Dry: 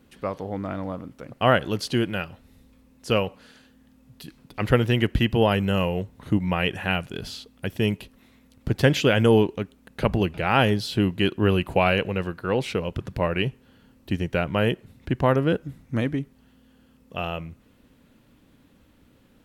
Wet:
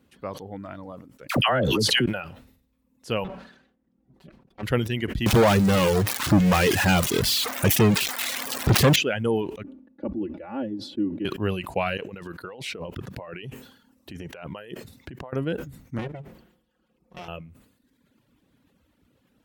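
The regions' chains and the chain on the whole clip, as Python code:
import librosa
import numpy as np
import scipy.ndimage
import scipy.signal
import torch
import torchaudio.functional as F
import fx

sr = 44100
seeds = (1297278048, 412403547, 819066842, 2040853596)

y = fx.chain(x, sr, fx.dispersion(late='lows', ms=76.0, hz=1000.0),
    fx.env_flatten(amount_pct=100), at=(1.29, 2.06))
y = fx.chain(y, sr, fx.lower_of_two(delay_ms=5.2),
    fx.lowpass(hz=1200.0, slope=6), at=(3.24, 4.63))
y = fx.chain(y, sr, fx.crossing_spikes(level_db=-14.0),
    fx.lowpass(hz=1200.0, slope=6),
    fx.leveller(passes=5), at=(5.26, 8.96))
y = fx.chain(y, sr, fx.bandpass_q(hz=310.0, q=1.9),
    fx.comb(ms=3.5, depth=0.94), at=(9.63, 11.25))
y = fx.chain(y, sr, fx.low_shelf(hz=130.0, db=-8.5),
    fx.over_compress(threshold_db=-32.0, ratio=-1.0), at=(11.97, 15.33))
y = fx.chain(y, sr, fx.lower_of_two(delay_ms=5.5),
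    fx.high_shelf(hz=3900.0, db=-9.0), at=(15.98, 17.28))
y = scipy.signal.sosfilt(scipy.signal.butter(2, 50.0, 'highpass', fs=sr, output='sos'), y)
y = fx.dereverb_blind(y, sr, rt60_s=1.1)
y = fx.sustainer(y, sr, db_per_s=80.0)
y = F.gain(torch.from_numpy(y), -5.0).numpy()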